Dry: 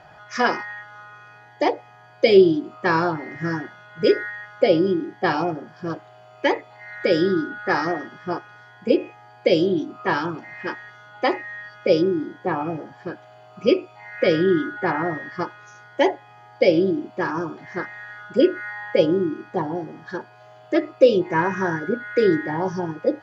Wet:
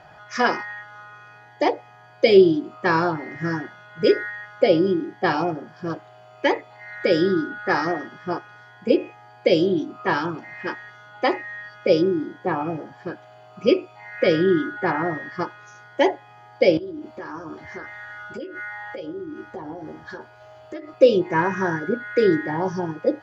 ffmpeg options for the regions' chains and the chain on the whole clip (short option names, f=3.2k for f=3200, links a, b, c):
-filter_complex "[0:a]asettb=1/sr,asplit=3[a][b][c];[a]atrim=end=16.774[d];[b]atrim=start=16.77:end=20.94,asetpts=PTS-STARTPTS,afade=t=in:d=0.004:c=qsin,afade=t=out:st=4.166:d=0.004:c=qsin,lowshelf=f=120:t=q:w=3:g=8.5,acompressor=threshold=-31dB:ratio=10:attack=3.2:release=140:knee=1:detection=peak,asplit=2[e][f];[f]adelay=13,volume=-6dB[g];[e][g]amix=inputs=2:normalize=0,atrim=end_sample=183897[h];[c]atrim=start=20.936[i];[d][h]acrossfade=d=0.004:c1=hsin:c2=qsin[j];[j][i]acrossfade=d=0.004:c1=qsin:c2=hsin"